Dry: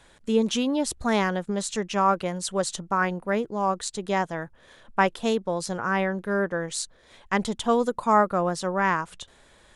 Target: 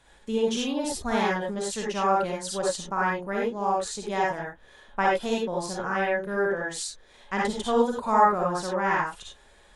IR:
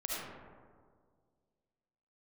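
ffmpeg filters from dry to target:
-filter_complex "[1:a]atrim=start_sample=2205,atrim=end_sample=6174,asetrate=57330,aresample=44100[link_01];[0:a][link_01]afir=irnorm=-1:irlink=0"

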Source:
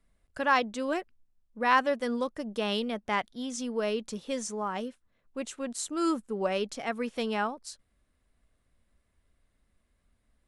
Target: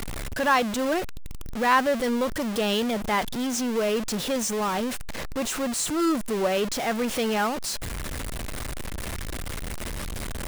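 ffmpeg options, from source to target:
ffmpeg -i in.wav -af "aeval=exprs='val(0)+0.5*0.0447*sgn(val(0))':channel_layout=same,volume=1.5dB" out.wav

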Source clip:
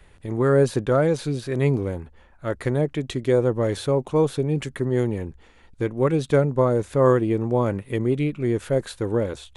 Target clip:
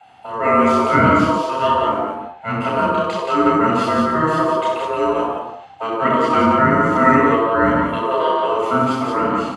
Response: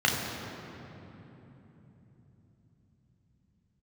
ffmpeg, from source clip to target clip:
-filter_complex "[0:a]aeval=exprs='val(0)*sin(2*PI*790*n/s)':channel_layout=same,aecho=1:1:64.14|174.9:0.501|0.631[link_01];[1:a]atrim=start_sample=2205,afade=type=out:start_time=0.25:duration=0.01,atrim=end_sample=11466[link_02];[link_01][link_02]afir=irnorm=-1:irlink=0,volume=-6.5dB"

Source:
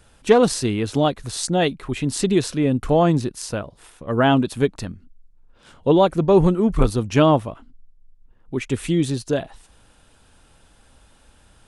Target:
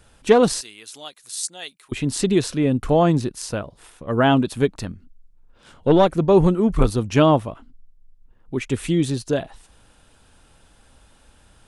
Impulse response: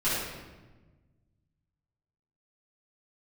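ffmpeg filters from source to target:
-filter_complex "[0:a]asettb=1/sr,asplit=3[link_01][link_02][link_03];[link_01]atrim=end=0.614[link_04];[link_02]atrim=start=0.61:end=1.92,asetpts=PTS-STARTPTS,afade=type=in:duration=0.004:curve=qsin,afade=type=out:start_time=1.306:duration=0.004:curve=qsin,aderivative[link_05];[link_03]atrim=start=1.916[link_06];[link_04][link_05]acrossfade=duration=0.004:curve1=hsin:curve2=qsin[link_07];[link_07][link_06]acrossfade=duration=0.004:curve1=qsin:curve2=hsin,asettb=1/sr,asplit=3[link_08][link_09][link_10];[link_08]atrim=end=4.774[link_11];[link_09]atrim=start=4.77:end=6.12,asetpts=PTS-STARTPTS,afade=type=in:duration=0.004:curve=qsin,afade=type=out:start_time=1.346:duration=0.004:curve=qsin,aeval=exprs='0.631*(cos(1*acos(clip(val(0)/0.631,-1,1)))-cos(1*PI/2))+0.0562*(cos(4*acos(clip(val(0)/0.631,-1,1)))-cos(4*PI/2))':channel_layout=same[link_12];[link_10]atrim=start=6.116[link_13];[link_11][link_12]acrossfade=duration=0.004:curve1=hsin:curve2=qsin[link_14];[link_14][link_13]acrossfade=duration=0.004:curve1=qsin:curve2=hsin"

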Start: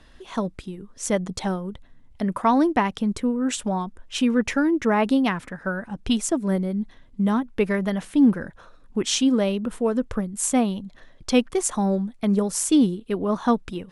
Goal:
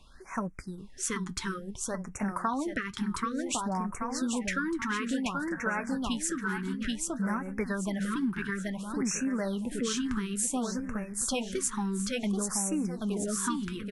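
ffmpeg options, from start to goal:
ffmpeg -i in.wav -af "equalizer=frequency=1500:width_type=o:width=1.8:gain=15,flanger=delay=5.1:depth=3.5:regen=-64:speed=0.25:shape=sinusoidal,bass=frequency=250:gain=9,treble=frequency=4000:gain=12,aecho=1:1:781|1562|2343|3124|3905:0.631|0.24|0.0911|0.0346|0.0132,acompressor=threshold=-18dB:ratio=5,afftfilt=real='re*(1-between(b*sr/1024,570*pow(4000/570,0.5+0.5*sin(2*PI*0.57*pts/sr))/1.41,570*pow(4000/570,0.5+0.5*sin(2*PI*0.57*pts/sr))*1.41))':imag='im*(1-between(b*sr/1024,570*pow(4000/570,0.5+0.5*sin(2*PI*0.57*pts/sr))/1.41,570*pow(4000/570,0.5+0.5*sin(2*PI*0.57*pts/sr))*1.41))':win_size=1024:overlap=0.75,volume=-9dB" out.wav

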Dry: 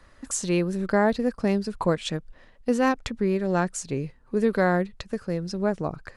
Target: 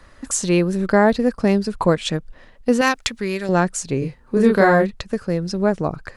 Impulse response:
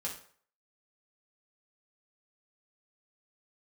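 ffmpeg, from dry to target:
-filter_complex "[0:a]asettb=1/sr,asplit=3[link_01][link_02][link_03];[link_01]atrim=end=2.814[link_04];[link_02]atrim=start=2.81:end=3.49,asetpts=PTS-STARTPTS,afade=type=in:duration=0.004:curve=qsin,afade=type=out:start_time=0.676:duration=0.004:curve=qsin,tiltshelf=frequency=1200:gain=-8.5[link_05];[link_03]atrim=start=3.486[link_06];[link_04][link_05]acrossfade=duration=0.004:curve1=hsin:curve2=qsin[link_07];[link_07][link_06]acrossfade=duration=0.004:curve1=qsin:curve2=hsin,asettb=1/sr,asplit=3[link_08][link_09][link_10];[link_08]atrim=end=3.994[link_11];[link_09]atrim=start=3.99:end=4.91,asetpts=PTS-STARTPTS,afade=type=in:duration=0.004:curve=qsin,afade=type=out:start_time=0.916:duration=0.004:curve=qsin,asplit=2[link_12][link_13];[link_13]adelay=30,volume=-2dB[link_14];[link_12][link_14]amix=inputs=2:normalize=0,atrim=end_sample=40572[link_15];[link_10]atrim=start=4.906[link_16];[link_11][link_15]acrossfade=duration=0.004:curve1=hsin:curve2=qsin[link_17];[link_17][link_16]acrossfade=duration=0.004:curve1=qsin:curve2=hsin,volume=6.5dB"

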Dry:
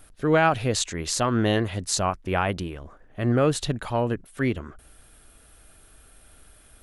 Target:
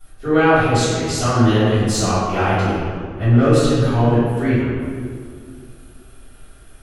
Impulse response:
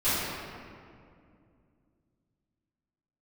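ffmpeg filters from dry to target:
-filter_complex "[0:a]asettb=1/sr,asplit=3[link_01][link_02][link_03];[link_01]atrim=end=1.734[link_04];[link_02]atrim=start=1.73:end=4.42,asetpts=PTS-STARTPTS,afade=type=in:duration=0.004:curve=qsin,afade=type=out:start_time=2.686:duration=0.004:curve=qsin,aeval=exprs='0.355*(cos(1*acos(clip(val(0)/0.355,-1,1)))-cos(1*PI/2))+0.0126*(cos(5*acos(clip(val(0)/0.355,-1,1)))-cos(5*PI/2))+0.00794*(cos(8*acos(clip(val(0)/0.355,-1,1)))-cos(8*PI/2))':channel_layout=same[link_05];[link_03]atrim=start=4.416[link_06];[link_04][link_05]acrossfade=duration=0.004:curve1=hsin:curve2=qsin[link_07];[link_07][link_06]acrossfade=duration=0.004:curve1=qsin:curve2=hsin[link_08];[1:a]atrim=start_sample=2205,asetrate=52920,aresample=44100[link_09];[link_08][link_09]afir=irnorm=-1:irlink=0,volume=-6.5dB"

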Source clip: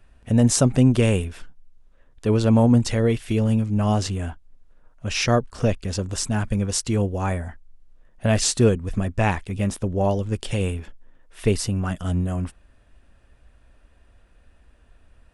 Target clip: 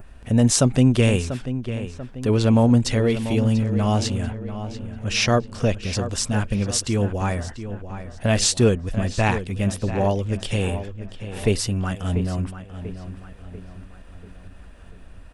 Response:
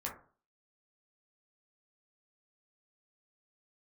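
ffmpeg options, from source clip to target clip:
-filter_complex "[0:a]adynamicequalizer=threshold=0.0112:dfrequency=3600:dqfactor=0.8:tfrequency=3600:tqfactor=0.8:attack=5:release=100:ratio=0.375:range=2:mode=boostabove:tftype=bell,acompressor=mode=upward:threshold=-32dB:ratio=2.5,asplit=2[link_01][link_02];[link_02]adelay=690,lowpass=frequency=3100:poles=1,volume=-11dB,asplit=2[link_03][link_04];[link_04]adelay=690,lowpass=frequency=3100:poles=1,volume=0.49,asplit=2[link_05][link_06];[link_06]adelay=690,lowpass=frequency=3100:poles=1,volume=0.49,asplit=2[link_07][link_08];[link_08]adelay=690,lowpass=frequency=3100:poles=1,volume=0.49,asplit=2[link_09][link_10];[link_10]adelay=690,lowpass=frequency=3100:poles=1,volume=0.49[link_11];[link_01][link_03][link_05][link_07][link_09][link_11]amix=inputs=6:normalize=0"

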